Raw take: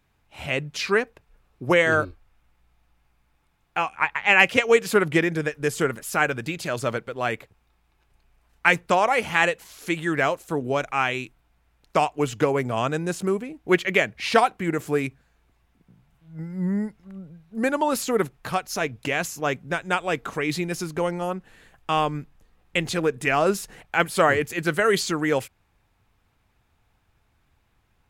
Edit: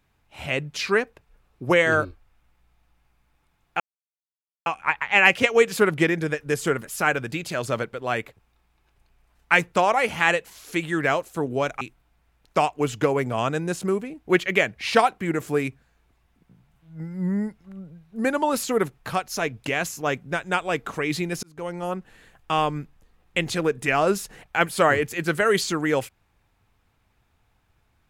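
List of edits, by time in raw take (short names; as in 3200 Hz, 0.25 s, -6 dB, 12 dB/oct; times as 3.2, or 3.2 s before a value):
3.8 insert silence 0.86 s
10.95–11.2 cut
20.82–21.32 fade in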